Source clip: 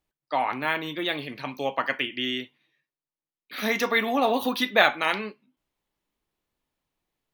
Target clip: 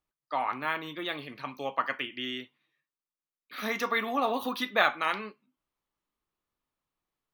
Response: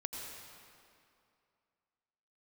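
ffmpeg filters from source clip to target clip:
-af "equalizer=f=1200:t=o:w=0.5:g=8,volume=0.447"

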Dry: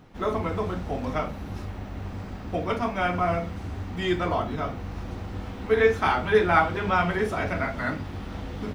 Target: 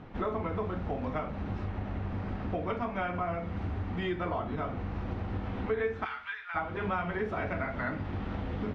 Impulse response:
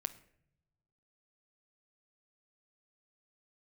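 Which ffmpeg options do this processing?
-filter_complex "[0:a]lowpass=2700,acompressor=threshold=0.0158:ratio=4,asplit=3[s0][s1][s2];[s0]afade=t=out:st=6.04:d=0.02[s3];[s1]highpass=f=1300:w=0.5412,highpass=f=1300:w=1.3066,afade=t=in:st=6.04:d=0.02,afade=t=out:st=6.54:d=0.02[s4];[s2]afade=t=in:st=6.54:d=0.02[s5];[s3][s4][s5]amix=inputs=3:normalize=0,asplit=2[s6][s7];[1:a]atrim=start_sample=2205,afade=t=out:st=0.37:d=0.01,atrim=end_sample=16758,asetrate=34839,aresample=44100[s8];[s7][s8]afir=irnorm=-1:irlink=0,volume=0.668[s9];[s6][s9]amix=inputs=2:normalize=0"

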